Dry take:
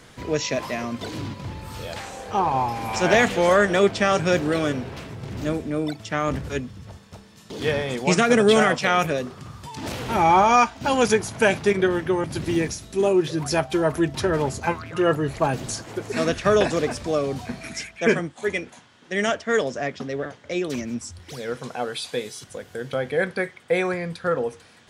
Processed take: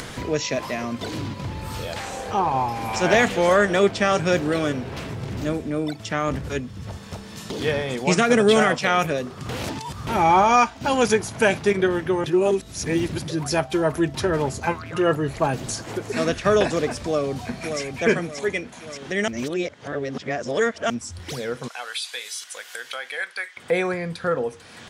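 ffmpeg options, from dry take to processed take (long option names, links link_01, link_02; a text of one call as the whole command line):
ffmpeg -i in.wav -filter_complex "[0:a]asplit=2[link_01][link_02];[link_02]afade=type=in:start_time=17.04:duration=0.01,afade=type=out:start_time=17.81:duration=0.01,aecho=0:1:580|1160|1740|2320:0.446684|0.156339|0.0547187|0.0191516[link_03];[link_01][link_03]amix=inputs=2:normalize=0,asettb=1/sr,asplit=3[link_04][link_05][link_06];[link_04]atrim=end=21.684[link_07];[link_05]atrim=start=21.68:end=23.57,asetpts=PTS-STARTPTS,afade=type=in:duration=0.004:curve=qsin,afade=type=out:start_time=1.886:duration=0.004:curve=qsin,highpass=1500[link_08];[link_06]atrim=start=23.566[link_09];[link_07][link_08]acrossfade=duration=0.004:curve1=hsin:curve2=qsin[link_10];[link_10][link_09]acrossfade=duration=0.004:curve1=qsin:curve2=hsin,asplit=7[link_11][link_12][link_13][link_14][link_15][link_16][link_17];[link_11]atrim=end=9.492[link_18];[link_12]atrim=start=9.488:end=10.072,asetpts=PTS-STARTPTS,areverse[link_19];[link_13]atrim=start=10.068:end=12.262[link_20];[link_14]atrim=start=12.258:end=13.282,asetpts=PTS-STARTPTS,areverse[link_21];[link_15]atrim=start=13.278:end=19.282[link_22];[link_16]atrim=start=19.278:end=20.902,asetpts=PTS-STARTPTS,areverse[link_23];[link_17]atrim=start=20.898[link_24];[link_18][link_19]acrossfade=duration=0.004:curve1=hsin:curve2=hsin[link_25];[link_25][link_20]acrossfade=duration=0.004:curve1=hsin:curve2=hsin[link_26];[link_26][link_21]acrossfade=duration=0.004:curve1=hsin:curve2=hsin[link_27];[link_27][link_22]acrossfade=duration=0.004:curve1=hsin:curve2=hsin[link_28];[link_28][link_23]acrossfade=duration=0.004:curve1=hsin:curve2=hsin[link_29];[link_29][link_24]acrossfade=duration=0.004:curve1=hsin:curve2=hsin,acompressor=mode=upward:threshold=-24dB:ratio=2.5" out.wav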